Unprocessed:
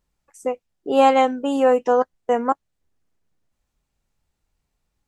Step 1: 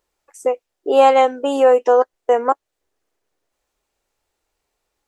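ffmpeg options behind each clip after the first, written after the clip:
ffmpeg -i in.wav -filter_complex "[0:a]lowshelf=frequency=270:width_type=q:width=1.5:gain=-12.5,asplit=2[link_01][link_02];[link_02]acompressor=threshold=-22dB:ratio=6,volume=-2dB[link_03];[link_01][link_03]amix=inputs=2:normalize=0" out.wav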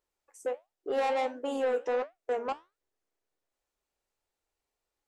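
ffmpeg -i in.wav -af "asoftclip=type=tanh:threshold=-13dB,flanger=delay=7:depth=9.9:regen=-72:speed=1.4:shape=triangular,volume=-7.5dB" out.wav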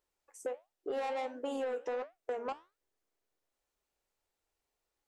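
ffmpeg -i in.wav -af "acompressor=threshold=-34dB:ratio=6" out.wav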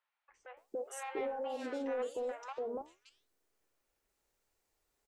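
ffmpeg -i in.wav -filter_complex "[0:a]alimiter=level_in=12dB:limit=-24dB:level=0:latency=1:release=106,volume=-12dB,acrossover=split=810|3300[link_01][link_02][link_03];[link_01]adelay=290[link_04];[link_03]adelay=570[link_05];[link_04][link_02][link_05]amix=inputs=3:normalize=0,volume=5.5dB" out.wav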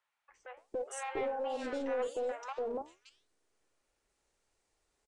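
ffmpeg -i in.wav -filter_complex "[0:a]acrossover=split=430|1800[link_01][link_02][link_03];[link_01]aeval=exprs='clip(val(0),-1,0.00376)':channel_layout=same[link_04];[link_04][link_02][link_03]amix=inputs=3:normalize=0,aresample=22050,aresample=44100,volume=3dB" out.wav

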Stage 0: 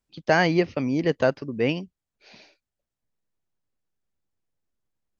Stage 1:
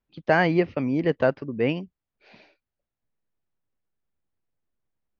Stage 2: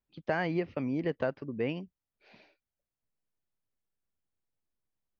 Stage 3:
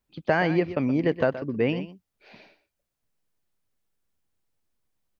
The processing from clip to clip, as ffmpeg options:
ffmpeg -i in.wav -af "lowpass=2800" out.wav
ffmpeg -i in.wav -af "acompressor=threshold=-22dB:ratio=2.5,volume=-6dB" out.wav
ffmpeg -i in.wav -af "aecho=1:1:123:0.211,volume=8dB" out.wav

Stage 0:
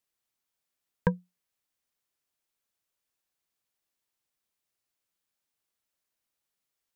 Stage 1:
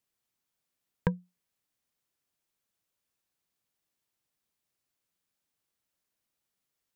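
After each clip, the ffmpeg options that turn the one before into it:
ffmpeg -i in.wav -af "equalizer=frequency=150:width_type=o:width=2.4:gain=5.5,acompressor=threshold=-27dB:ratio=2.5" out.wav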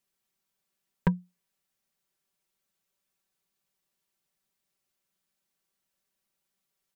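ffmpeg -i in.wav -af "aecho=1:1:5.2:0.77" out.wav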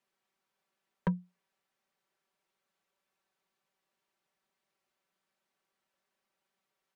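ffmpeg -i in.wav -filter_complex "[0:a]asplit=2[link_01][link_02];[link_02]highpass=frequency=720:poles=1,volume=19dB,asoftclip=type=tanh:threshold=-11dB[link_03];[link_01][link_03]amix=inputs=2:normalize=0,lowpass=frequency=1000:poles=1,volume=-6dB,acrossover=split=230|3000[link_04][link_05][link_06];[link_05]acompressor=threshold=-30dB:ratio=6[link_07];[link_04][link_07][link_06]amix=inputs=3:normalize=0,volume=-3.5dB" out.wav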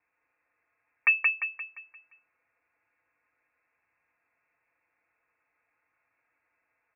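ffmpeg -i in.wav -filter_complex "[0:a]asplit=2[link_01][link_02];[link_02]aecho=0:1:174|348|522|696|870|1044:0.708|0.311|0.137|0.0603|0.0265|0.0117[link_03];[link_01][link_03]amix=inputs=2:normalize=0,lowpass=frequency=2400:width_type=q:width=0.5098,lowpass=frequency=2400:width_type=q:width=0.6013,lowpass=frequency=2400:width_type=q:width=0.9,lowpass=frequency=2400:width_type=q:width=2.563,afreqshift=-2800,volume=7.5dB" out.wav

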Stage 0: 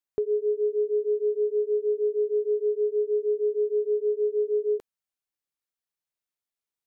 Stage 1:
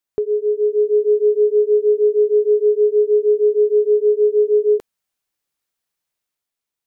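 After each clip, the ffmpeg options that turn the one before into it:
ffmpeg -i in.wav -af "dynaudnorm=framelen=130:gausssize=11:maxgain=4.5dB,volume=6dB" out.wav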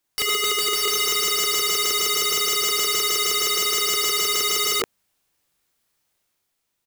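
ffmpeg -i in.wav -filter_complex "[0:a]lowshelf=frequency=350:gain=3.5,asplit=2[link_01][link_02];[link_02]adelay=39,volume=-3dB[link_03];[link_01][link_03]amix=inputs=2:normalize=0,aeval=exprs='(mod(16.8*val(0)+1,2)-1)/16.8':channel_layout=same,volume=7dB" out.wav

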